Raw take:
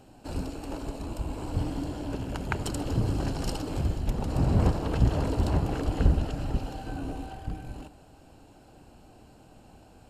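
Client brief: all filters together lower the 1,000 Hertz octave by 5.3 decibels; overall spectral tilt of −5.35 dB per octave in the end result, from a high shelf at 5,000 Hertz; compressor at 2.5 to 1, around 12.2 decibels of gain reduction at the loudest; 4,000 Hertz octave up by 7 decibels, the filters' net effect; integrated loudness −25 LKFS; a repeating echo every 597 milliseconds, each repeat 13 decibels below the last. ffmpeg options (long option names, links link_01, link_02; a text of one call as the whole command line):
ffmpeg -i in.wav -af "equalizer=frequency=1000:width_type=o:gain=-8,equalizer=frequency=4000:width_type=o:gain=6.5,highshelf=frequency=5000:gain=6.5,acompressor=threshold=-34dB:ratio=2.5,aecho=1:1:597|1194|1791:0.224|0.0493|0.0108,volume=12dB" out.wav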